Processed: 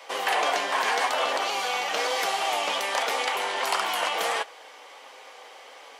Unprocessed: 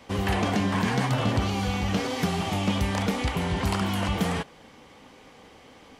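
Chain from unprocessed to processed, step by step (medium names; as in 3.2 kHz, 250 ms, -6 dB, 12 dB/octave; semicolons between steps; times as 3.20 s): flange 0.46 Hz, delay 6 ms, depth 1.9 ms, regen -65%; in parallel at -6.5 dB: saturation -31.5 dBFS, distortion -10 dB; on the sum: high-pass 520 Hz 24 dB/octave; trim +7.5 dB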